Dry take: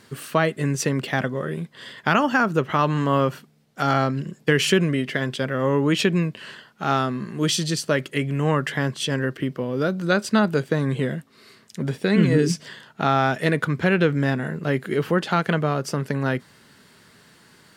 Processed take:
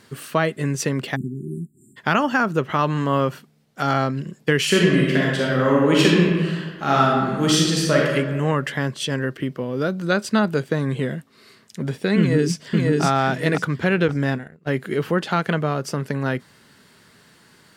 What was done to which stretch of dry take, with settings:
1.16–1.97 spectral delete 390–7000 Hz
4.66–8.12 reverb throw, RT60 1.4 s, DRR -3.5 dB
12.19–13.03 echo throw 0.54 s, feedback 25%, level -1 dB
14.08–14.72 gate -26 dBFS, range -25 dB

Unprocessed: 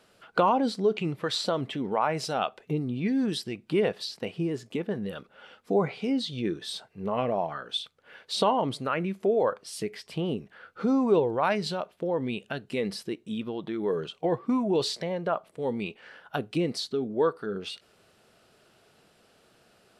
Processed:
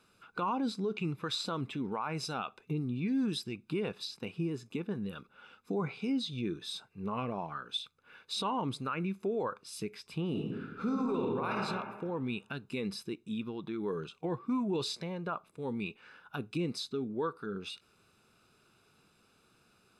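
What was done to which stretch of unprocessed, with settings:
10.28–11.54 reverb throw, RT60 1.3 s, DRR -2 dB
whole clip: comb 0.8 ms, depth 60%; limiter -18.5 dBFS; gain -6.5 dB

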